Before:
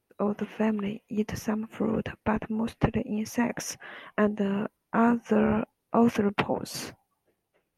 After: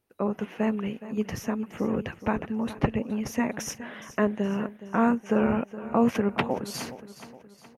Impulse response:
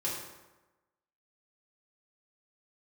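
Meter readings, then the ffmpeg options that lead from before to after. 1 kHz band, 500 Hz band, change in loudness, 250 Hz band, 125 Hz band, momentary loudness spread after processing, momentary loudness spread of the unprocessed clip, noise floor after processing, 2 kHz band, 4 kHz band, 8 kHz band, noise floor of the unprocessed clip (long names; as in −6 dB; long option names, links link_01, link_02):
0.0 dB, 0.0 dB, 0.0 dB, 0.0 dB, 0.0 dB, 11 LU, 9 LU, −54 dBFS, 0.0 dB, 0.0 dB, 0.0 dB, −80 dBFS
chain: -af "aecho=1:1:418|836|1254|1672:0.178|0.0836|0.0393|0.0185"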